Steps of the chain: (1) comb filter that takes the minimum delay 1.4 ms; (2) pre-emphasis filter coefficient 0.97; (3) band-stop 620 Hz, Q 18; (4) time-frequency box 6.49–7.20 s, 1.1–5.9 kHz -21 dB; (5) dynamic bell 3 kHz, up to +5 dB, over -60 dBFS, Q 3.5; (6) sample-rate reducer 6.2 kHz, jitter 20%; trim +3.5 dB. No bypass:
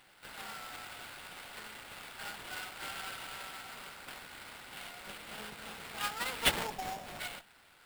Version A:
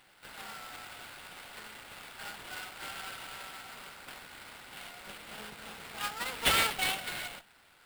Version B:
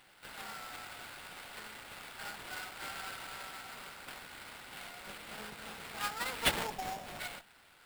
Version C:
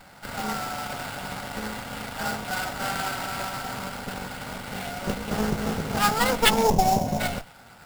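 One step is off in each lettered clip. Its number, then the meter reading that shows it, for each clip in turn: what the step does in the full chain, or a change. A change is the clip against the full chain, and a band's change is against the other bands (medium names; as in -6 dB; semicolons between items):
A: 4, 250 Hz band -2.0 dB; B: 5, 4 kHz band -2.0 dB; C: 2, 4 kHz band -9.0 dB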